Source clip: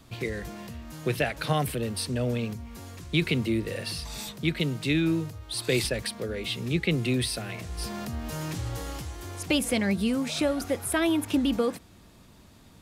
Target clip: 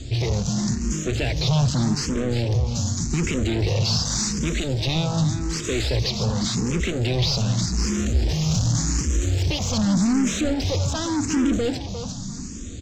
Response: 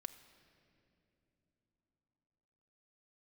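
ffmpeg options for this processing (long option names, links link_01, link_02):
-filter_complex "[0:a]apsyclip=22.5dB,acrossover=split=5200[link_01][link_02];[link_02]acompressor=threshold=-19dB:ratio=4:attack=1:release=60[link_03];[link_01][link_03]amix=inputs=2:normalize=0,firequalizer=gain_entry='entry(140,0);entry(850,-14);entry(6100,11)':delay=0.05:min_phase=1,aresample=16000,asoftclip=type=tanh:threshold=-17.5dB,aresample=44100,lowshelf=frequency=280:gain=6.5,aeval=exprs='0.355*(cos(1*acos(clip(val(0)/0.355,-1,1)))-cos(1*PI/2))+0.01*(cos(5*acos(clip(val(0)/0.355,-1,1)))-cos(5*PI/2))':channel_layout=same,asplit=2[link_04][link_05];[link_05]aecho=0:1:353|706|1059:0.376|0.0977|0.0254[link_06];[link_04][link_06]amix=inputs=2:normalize=0,asplit=2[link_07][link_08];[link_08]afreqshift=0.86[link_09];[link_07][link_09]amix=inputs=2:normalize=1,volume=-4dB"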